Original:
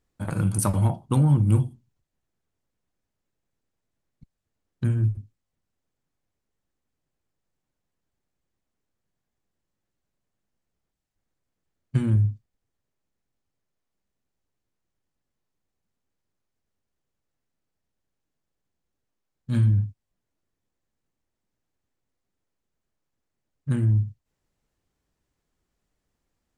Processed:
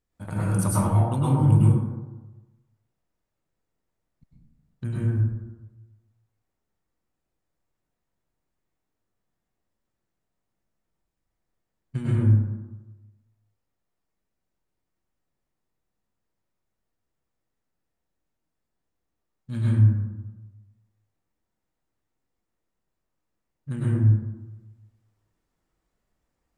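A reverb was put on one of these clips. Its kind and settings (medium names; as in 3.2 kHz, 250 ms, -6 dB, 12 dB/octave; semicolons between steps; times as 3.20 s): plate-style reverb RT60 1.1 s, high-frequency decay 0.35×, pre-delay 90 ms, DRR -8 dB; trim -7 dB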